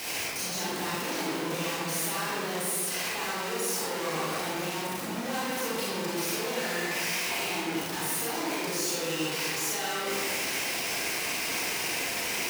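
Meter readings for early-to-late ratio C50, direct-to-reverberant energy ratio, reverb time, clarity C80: -3.5 dB, -7.5 dB, 1.8 s, -0.5 dB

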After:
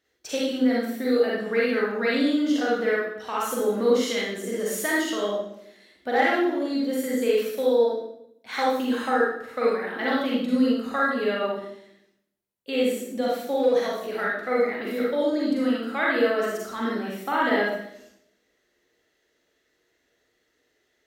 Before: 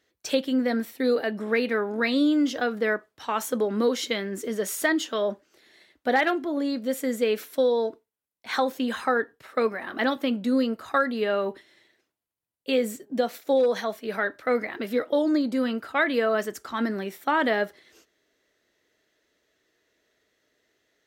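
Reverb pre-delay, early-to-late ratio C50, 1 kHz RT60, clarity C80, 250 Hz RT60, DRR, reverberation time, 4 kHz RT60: 37 ms, -2.0 dB, 0.65 s, 4.0 dB, 1.0 s, -5.5 dB, 0.75 s, 0.65 s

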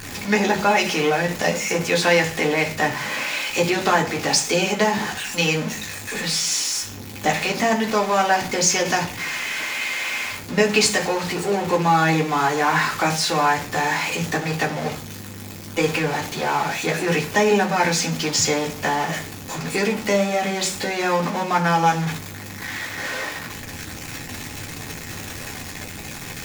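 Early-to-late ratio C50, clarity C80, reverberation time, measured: 13.0 dB, 17.5 dB, 0.40 s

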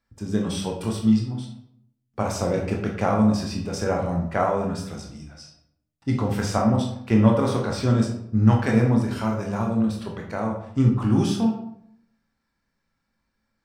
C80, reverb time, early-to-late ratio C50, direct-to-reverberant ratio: 8.5 dB, 0.70 s, 5.0 dB, 0.0 dB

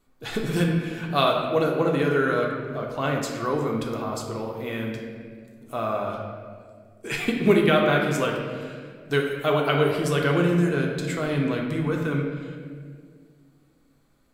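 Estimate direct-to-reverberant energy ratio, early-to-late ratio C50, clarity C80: -0.5 dB, 3.0 dB, 4.5 dB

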